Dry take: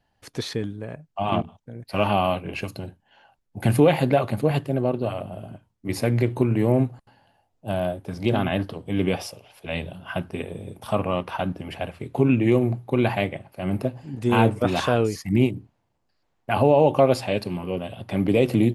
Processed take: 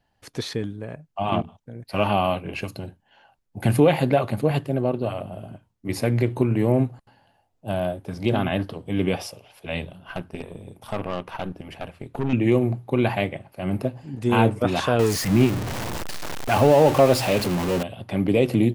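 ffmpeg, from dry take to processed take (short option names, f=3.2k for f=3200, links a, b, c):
-filter_complex "[0:a]asettb=1/sr,asplit=3[a][b][c];[a]atrim=end=9.854[d];[b]atrim=start=9.85:end=12.33,asetpts=PTS-STARTPTS,afade=t=in:d=0.004:c=qsin,afade=t=out:st=2.476:d=0.004:c=qsin,aeval=exprs='(tanh(11.2*val(0)+0.75)-tanh(0.75))/11.2':c=same[e];[c]atrim=start=12.326[f];[d][e]acrossfade=d=0.004:c1=hsin:c2=qsin[g];[g][f]acrossfade=d=0.004:c1=qsin:c2=hsin,asettb=1/sr,asplit=3[h][i][j];[h]atrim=end=14.994[k];[i]atrim=start=14.99:end=17.83,asetpts=PTS-STARTPTS,afade=t=in:d=0.004:c=qsin,afade=t=out:st=2.836:d=0.004:c=qsin,aeval=exprs='val(0)+0.5*0.075*sgn(val(0))':c=same[l];[j]atrim=start=17.826[m];[k][l]acrossfade=d=0.004:c1=hsin:c2=qsin[n];[n][m]acrossfade=d=0.004:c1=qsin:c2=hsin"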